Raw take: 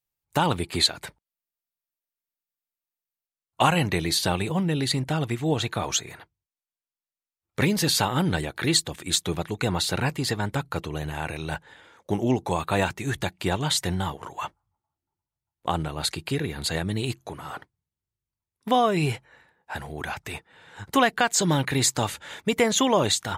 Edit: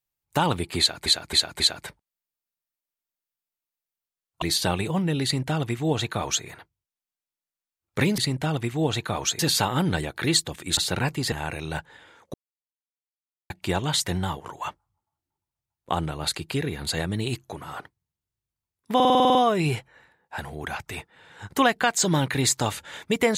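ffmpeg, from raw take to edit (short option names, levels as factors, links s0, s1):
-filter_complex "[0:a]asplit=19[s0][s1][s2][s3][s4][s5][s6][s7][s8][s9][s10][s11][s12][s13][s14][s15][s16][s17][s18];[s0]atrim=end=1.062[s19];[s1]atrim=start=0.788:end=1.062[s20];[s2]atrim=start=0.788:end=1.062[s21];[s3]atrim=start=0.788:end=3.612[s22];[s4]atrim=start=4.028:end=7.792[s23];[s5]atrim=start=4.848:end=6.062[s24];[s6]atrim=start=7.788:end=9.172[s25];[s7]atrim=start=9.778:end=10.332[s26];[s8]atrim=start=11.088:end=12.11,asetpts=PTS-STARTPTS,afade=t=out:st=1.018:d=0.004:c=hsin[s27];[s9]atrim=start=12.11:end=13.27,asetpts=PTS-STARTPTS,volume=0[s28];[s10]atrim=start=13.27:end=18.772,asetpts=PTS-STARTPTS,afade=t=in:d=0.004:c=hsin[s29];[s11]atrim=start=18.718:end=18.772[s30];[s12]atrim=start=18.718:end=18.772[s31];[s13]atrim=start=18.718:end=18.772[s32];[s14]atrim=start=18.718:end=18.772[s33];[s15]atrim=start=18.718:end=18.772[s34];[s16]atrim=start=18.718:end=18.772[s35];[s17]atrim=start=18.718:end=18.772[s36];[s18]atrim=start=18.718[s37];[s19][s20]acrossfade=d=0.004:c1=hsin:c2=hsin[s38];[s38][s21]acrossfade=d=0.004:c1=hsin:c2=hsin[s39];[s39][s22]acrossfade=d=0.004:c1=hsin:c2=hsin[s40];[s40][s23]acrossfade=d=0.004:c1=hsin:c2=hsin[s41];[s41][s24]acrossfade=d=0.004:c1=hsin:c2=hsin[s42];[s42][s25]acrossfade=d=0.004:c1=hsin:c2=hsin[s43];[s43][s26]acrossfade=d=0.004:c1=hsin:c2=hsin[s44];[s27][s28][s29]concat=n=3:v=0:a=1[s45];[s44][s45]acrossfade=d=0.004:c1=hsin:c2=hsin[s46];[s46][s30]acrossfade=d=0.004:c1=hsin:c2=hsin[s47];[s47][s31]acrossfade=d=0.004:c1=hsin:c2=hsin[s48];[s48][s32]acrossfade=d=0.004:c1=hsin:c2=hsin[s49];[s49][s33]acrossfade=d=0.004:c1=hsin:c2=hsin[s50];[s50][s34]acrossfade=d=0.004:c1=hsin:c2=hsin[s51];[s51][s35]acrossfade=d=0.004:c1=hsin:c2=hsin[s52];[s52][s36]acrossfade=d=0.004:c1=hsin:c2=hsin[s53];[s53][s37]acrossfade=d=0.004:c1=hsin:c2=hsin"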